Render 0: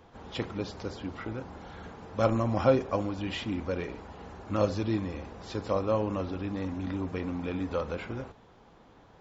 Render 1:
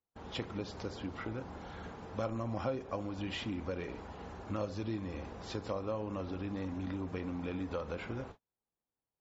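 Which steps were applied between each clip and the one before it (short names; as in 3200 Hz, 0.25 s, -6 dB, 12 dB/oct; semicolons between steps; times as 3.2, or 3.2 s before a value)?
gate -47 dBFS, range -39 dB; compressor 3:1, threshold -34 dBFS, peak gain reduction 13 dB; gain -1.5 dB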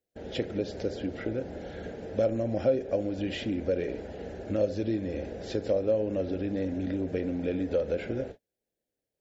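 EQ curve 150 Hz 0 dB, 590 Hz +9 dB, 1100 Hz -19 dB, 1600 Hz +1 dB, 2400 Hz -1 dB; gain +4 dB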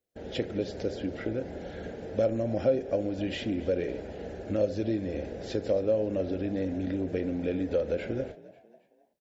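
frequency-shifting echo 0.271 s, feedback 44%, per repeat +53 Hz, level -19.5 dB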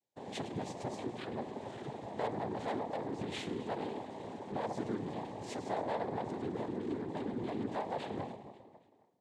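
split-band echo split 520 Hz, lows 0.136 s, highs 0.104 s, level -13 dB; soft clip -29.5 dBFS, distortion -8 dB; noise vocoder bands 6; gain -3.5 dB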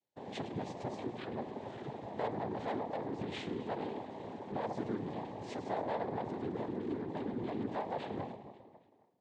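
air absorption 97 m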